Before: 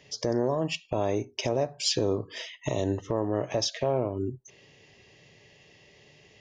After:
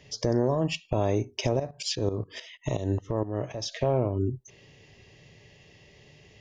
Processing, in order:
low-shelf EQ 130 Hz +11.5 dB
0:01.57–0:03.71: shaped tremolo saw up 9.4 Hz → 2.9 Hz, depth 80%

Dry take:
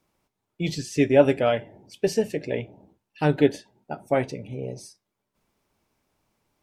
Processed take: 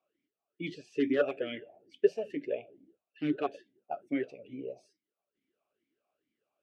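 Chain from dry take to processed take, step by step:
wavefolder on the positive side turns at −11 dBFS
formant filter swept between two vowels a-i 2.3 Hz
level +2 dB

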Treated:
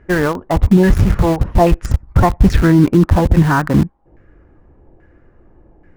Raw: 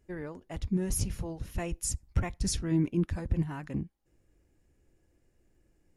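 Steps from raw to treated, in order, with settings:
auto-filter low-pass saw down 1.2 Hz 820–1,700 Hz
in parallel at −11 dB: bit reduction 6 bits
on the sum: boost into a limiter +21.5 dB
level −1 dB

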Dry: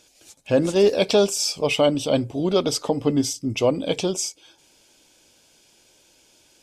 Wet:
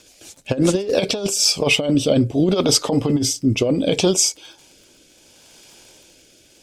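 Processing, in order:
surface crackle 49 per second −45 dBFS
rotating-speaker cabinet horn 7 Hz, later 0.7 Hz, at 0:00.73
compressor whose output falls as the input rises −23 dBFS, ratio −0.5
level +7.5 dB

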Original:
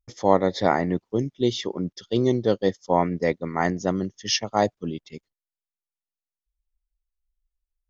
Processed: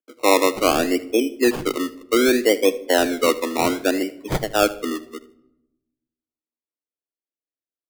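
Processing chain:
adaptive Wiener filter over 9 samples
Butterworth high-pass 240 Hz 72 dB per octave
low-pass that shuts in the quiet parts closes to 640 Hz, open at −19.5 dBFS
low-pass filter 3,300 Hz 12 dB per octave
flat-topped bell 1,200 Hz −13.5 dB 1.1 octaves
in parallel at +2 dB: brickwall limiter −16.5 dBFS, peak gain reduction 8.5 dB
on the sum: sample-and-hold swept by an LFO 22×, swing 60% 0.65 Hz
repeating echo 77 ms, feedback 25%, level −19 dB
convolution reverb RT60 0.95 s, pre-delay 6 ms, DRR 14 dB

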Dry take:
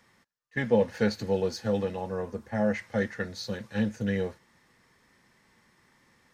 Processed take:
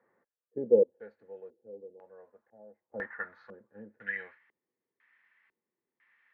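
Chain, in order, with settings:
band-pass filter sweep 480 Hz → 2,700 Hz, 0:01.98–0:04.55
0:00.83–0:02.92: first-order pre-emphasis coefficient 0.9
auto-filter low-pass square 1 Hz 390–1,700 Hz

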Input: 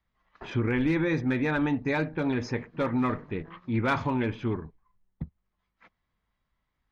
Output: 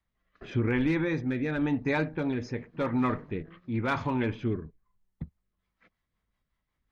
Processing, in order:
rotating-speaker cabinet horn 0.9 Hz, later 5.5 Hz, at 0:05.22

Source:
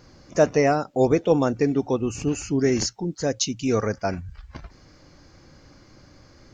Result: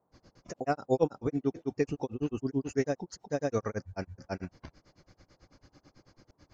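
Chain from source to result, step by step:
granular cloud 100 ms, grains 9.1 per second, spray 379 ms, pitch spread up and down by 0 semitones
noise in a band 73–920 Hz −71 dBFS
level −5.5 dB

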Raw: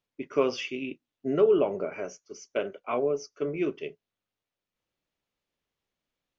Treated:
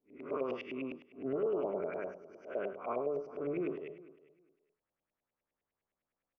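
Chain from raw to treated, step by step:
spectrum smeared in time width 146 ms
mains-hum notches 50/100/150 Hz
repeating echo 399 ms, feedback 17%, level −20 dB
brickwall limiter −25 dBFS, peak gain reduction 8 dB
auto-filter low-pass saw up 9.8 Hz 570–2,400 Hz
level −4 dB

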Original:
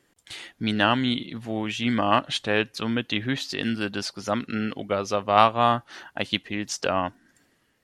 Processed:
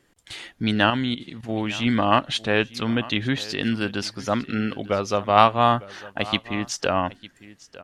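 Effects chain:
low-shelf EQ 68 Hz +9 dB
0:00.90–0:01.49: output level in coarse steps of 13 dB
high-shelf EQ 9,700 Hz −4 dB
single-tap delay 903 ms −19 dB
level +2 dB

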